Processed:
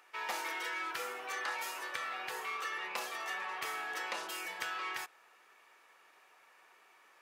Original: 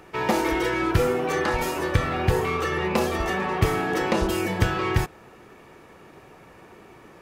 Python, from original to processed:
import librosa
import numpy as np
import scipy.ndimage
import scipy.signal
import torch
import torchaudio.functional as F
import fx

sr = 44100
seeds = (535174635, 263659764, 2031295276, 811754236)

y = scipy.signal.sosfilt(scipy.signal.butter(2, 1100.0, 'highpass', fs=sr, output='sos'), x)
y = y * 10.0 ** (-8.5 / 20.0)